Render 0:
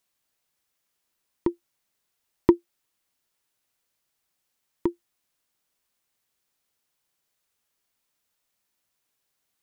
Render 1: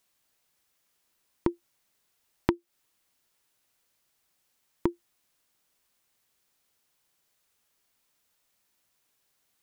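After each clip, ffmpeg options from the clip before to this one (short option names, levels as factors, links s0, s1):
-af "acompressor=threshold=0.0501:ratio=10,volume=1.58"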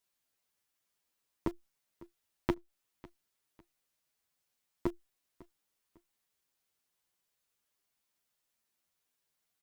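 -filter_complex "[0:a]asplit=2[s0][s1];[s1]acrusher=bits=3:dc=4:mix=0:aa=0.000001,volume=0.531[s2];[s0][s2]amix=inputs=2:normalize=0,aecho=1:1:551|1102:0.0891|0.0285,asplit=2[s3][s4];[s4]adelay=8.9,afreqshift=0.44[s5];[s3][s5]amix=inputs=2:normalize=1,volume=0.501"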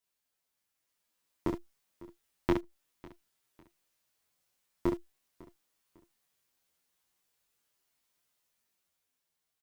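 -filter_complex "[0:a]dynaudnorm=f=230:g=9:m=1.88,asplit=2[s0][s1];[s1]aecho=0:1:23|66:0.708|0.501[s2];[s0][s2]amix=inputs=2:normalize=0,volume=0.631"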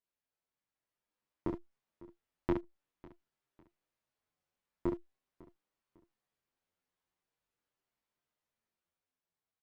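-af "lowpass=f=1400:p=1,volume=0.668"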